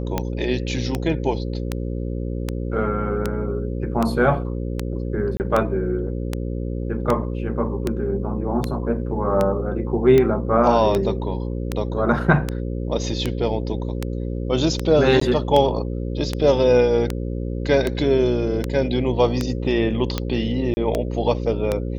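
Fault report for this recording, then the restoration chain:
mains buzz 60 Hz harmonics 9 −26 dBFS
scratch tick 78 rpm −8 dBFS
0:05.37–0:05.40: drop-out 29 ms
0:15.20–0:15.21: drop-out 14 ms
0:20.74–0:20.77: drop-out 30 ms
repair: click removal
hum removal 60 Hz, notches 9
repair the gap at 0:05.37, 29 ms
repair the gap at 0:15.20, 14 ms
repair the gap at 0:20.74, 30 ms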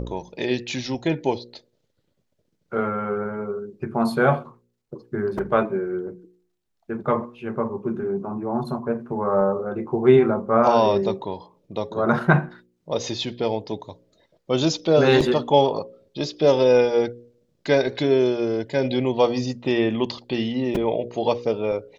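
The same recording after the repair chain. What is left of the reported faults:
none of them is left

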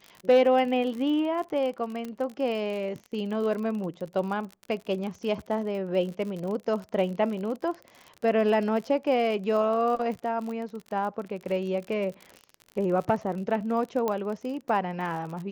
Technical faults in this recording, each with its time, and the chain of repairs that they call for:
surface crackle 49 per second −34 dBFS
0:02.05: click −23 dBFS
0:14.08: click −15 dBFS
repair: click removal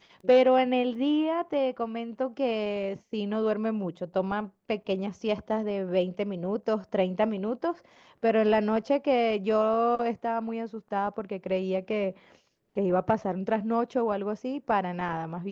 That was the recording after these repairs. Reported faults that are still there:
none of them is left

